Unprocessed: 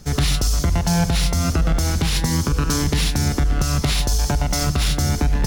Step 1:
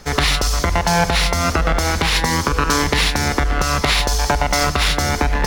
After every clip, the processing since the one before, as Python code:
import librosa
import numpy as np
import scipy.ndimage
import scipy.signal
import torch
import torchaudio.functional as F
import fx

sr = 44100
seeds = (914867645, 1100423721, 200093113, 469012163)

y = fx.graphic_eq(x, sr, hz=(125, 500, 1000, 2000, 4000), db=(-6, 6, 9, 9, 4))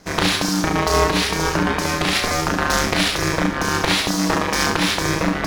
y = fx.cheby_harmonics(x, sr, harmonics=(7,), levels_db=(-25,), full_scale_db=-2.0)
y = fx.room_early_taps(y, sr, ms=(34, 70), db=(-3.5, -4.5))
y = y * np.sin(2.0 * np.pi * 240.0 * np.arange(len(y)) / sr)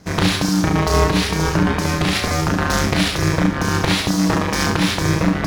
y = fx.peak_eq(x, sr, hz=110.0, db=10.0, octaves=2.2)
y = y * librosa.db_to_amplitude(-1.5)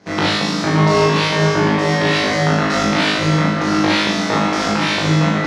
y = fx.bandpass_edges(x, sr, low_hz=190.0, high_hz=4600.0)
y = fx.room_flutter(y, sr, wall_m=3.3, rt60_s=0.78)
y = fx.rev_freeverb(y, sr, rt60_s=4.5, hf_ratio=0.85, predelay_ms=15, drr_db=10.5)
y = y * librosa.db_to_amplitude(-1.0)